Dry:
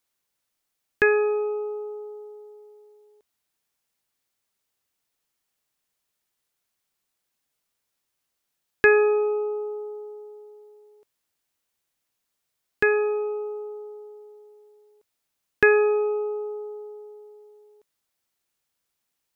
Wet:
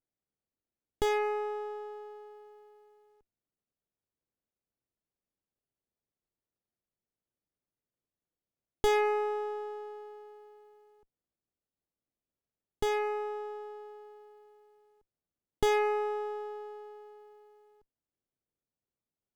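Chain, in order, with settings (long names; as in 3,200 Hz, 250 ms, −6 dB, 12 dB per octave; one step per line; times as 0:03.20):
running median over 25 samples
windowed peak hold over 33 samples
level −5 dB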